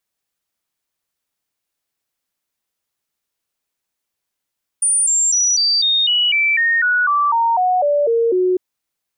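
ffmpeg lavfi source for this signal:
ffmpeg -f lavfi -i "aevalsrc='0.237*clip(min(mod(t,0.25),0.25-mod(t,0.25))/0.005,0,1)*sin(2*PI*9310*pow(2,-floor(t/0.25)/3)*mod(t,0.25))':duration=3.75:sample_rate=44100" out.wav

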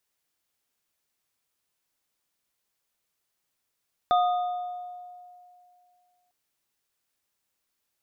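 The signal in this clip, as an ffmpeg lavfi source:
ffmpeg -f lavfi -i "aevalsrc='0.126*pow(10,-3*t/2.48)*sin(2*PI*718*t)+0.0708*pow(10,-3*t/1.25)*sin(2*PI*1240*t)+0.0188*pow(10,-3*t/1.23)*sin(2*PI*3570*t)':duration=2.2:sample_rate=44100" out.wav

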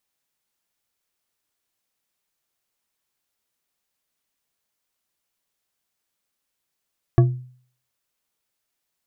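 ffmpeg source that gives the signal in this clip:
ffmpeg -f lavfi -i "aevalsrc='0.398*pow(10,-3*t/0.51)*sin(2*PI*126*t)+0.188*pow(10,-3*t/0.251)*sin(2*PI*347.4*t)+0.0891*pow(10,-3*t/0.157)*sin(2*PI*680.9*t)+0.0422*pow(10,-3*t/0.11)*sin(2*PI*1125.6*t)+0.02*pow(10,-3*t/0.083)*sin(2*PI*1680.8*t)':duration=0.89:sample_rate=44100" out.wav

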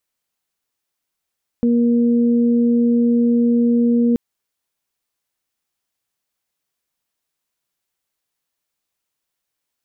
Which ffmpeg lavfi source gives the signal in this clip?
ffmpeg -f lavfi -i "aevalsrc='0.237*sin(2*PI*237*t)+0.0794*sin(2*PI*474*t)':duration=2.53:sample_rate=44100" out.wav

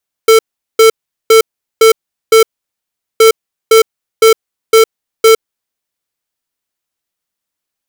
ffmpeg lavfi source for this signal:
ffmpeg -f lavfi -i "aevalsrc='0.596*(2*lt(mod(446*t,1),0.5)-1)*clip(min(mod(mod(t,2.92),0.51),0.11-mod(mod(t,2.92),0.51))/0.005,0,1)*lt(mod(t,2.92),2.55)':duration=5.84:sample_rate=44100" out.wav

